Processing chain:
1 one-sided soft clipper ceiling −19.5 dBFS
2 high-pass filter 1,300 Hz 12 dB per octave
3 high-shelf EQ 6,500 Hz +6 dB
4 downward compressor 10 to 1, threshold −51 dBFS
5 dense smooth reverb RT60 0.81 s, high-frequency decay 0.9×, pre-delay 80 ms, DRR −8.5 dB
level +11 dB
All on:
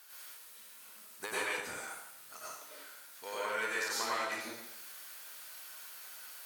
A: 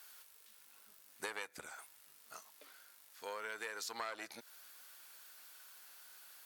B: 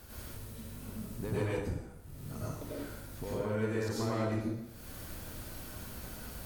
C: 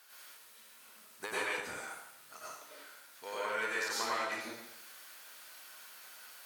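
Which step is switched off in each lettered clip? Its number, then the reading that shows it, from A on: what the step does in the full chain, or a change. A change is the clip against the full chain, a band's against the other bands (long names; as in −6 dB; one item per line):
5, change in crest factor +6.0 dB
2, 125 Hz band +34.5 dB
3, 8 kHz band −2.5 dB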